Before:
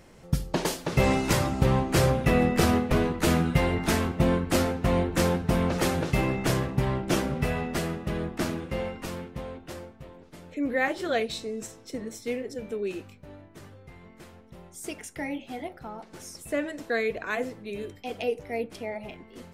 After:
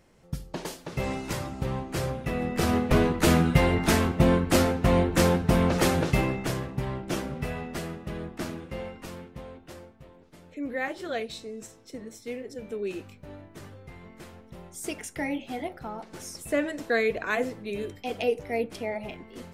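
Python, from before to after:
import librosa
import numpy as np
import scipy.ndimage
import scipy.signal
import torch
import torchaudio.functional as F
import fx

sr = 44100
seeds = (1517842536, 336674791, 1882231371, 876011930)

y = fx.gain(x, sr, db=fx.line((2.38, -8.0), (2.94, 2.5), (6.08, 2.5), (6.53, -5.0), (12.29, -5.0), (13.33, 2.5)))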